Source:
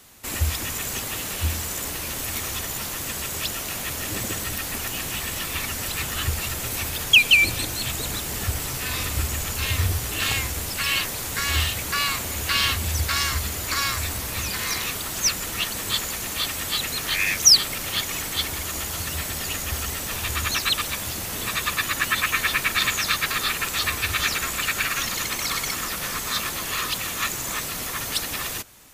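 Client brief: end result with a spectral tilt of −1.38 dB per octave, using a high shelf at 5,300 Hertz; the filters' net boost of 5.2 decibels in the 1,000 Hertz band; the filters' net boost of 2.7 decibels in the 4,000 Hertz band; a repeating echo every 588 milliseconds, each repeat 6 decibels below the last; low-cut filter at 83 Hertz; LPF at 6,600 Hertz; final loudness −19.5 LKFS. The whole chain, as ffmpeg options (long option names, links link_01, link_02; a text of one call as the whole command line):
ffmpeg -i in.wav -af "highpass=83,lowpass=6600,equalizer=frequency=1000:width_type=o:gain=6.5,equalizer=frequency=4000:width_type=o:gain=6.5,highshelf=frequency=5300:gain=-6.5,aecho=1:1:588|1176|1764|2352|2940|3528:0.501|0.251|0.125|0.0626|0.0313|0.0157,volume=1.5dB" out.wav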